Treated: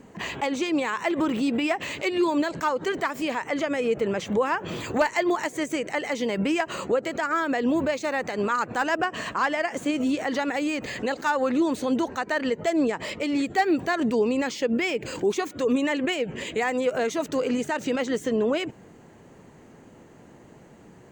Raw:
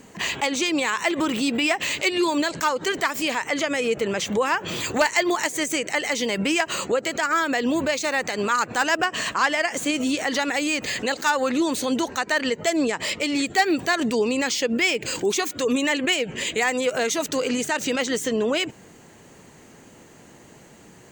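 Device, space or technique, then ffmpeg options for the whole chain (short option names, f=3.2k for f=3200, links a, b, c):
through cloth: -af "highshelf=f=2.2k:g=-13"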